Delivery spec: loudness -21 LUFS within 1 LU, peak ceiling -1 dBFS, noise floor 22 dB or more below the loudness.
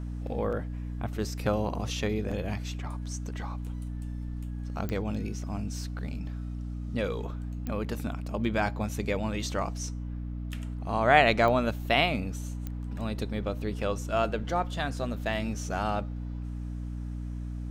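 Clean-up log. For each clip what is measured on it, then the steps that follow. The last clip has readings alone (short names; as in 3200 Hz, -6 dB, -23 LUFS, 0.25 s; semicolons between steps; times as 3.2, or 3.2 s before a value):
clicks 4; hum 60 Hz; harmonics up to 300 Hz; hum level -33 dBFS; loudness -31.0 LUFS; peak -7.5 dBFS; loudness target -21.0 LUFS
-> de-click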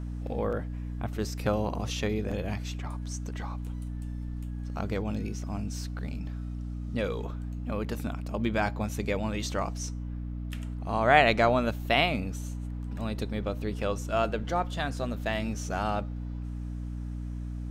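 clicks 0; hum 60 Hz; harmonics up to 300 Hz; hum level -33 dBFS
-> de-hum 60 Hz, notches 5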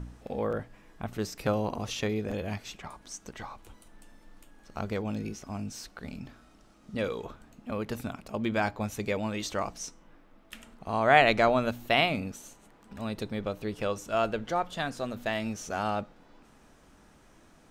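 hum none; loudness -30.5 LUFS; peak -7.5 dBFS; loudness target -21.0 LUFS
-> gain +9.5 dB; limiter -1 dBFS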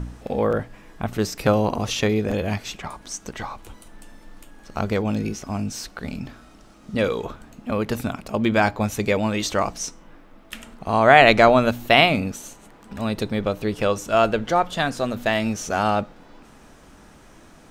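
loudness -21.5 LUFS; peak -1.0 dBFS; noise floor -49 dBFS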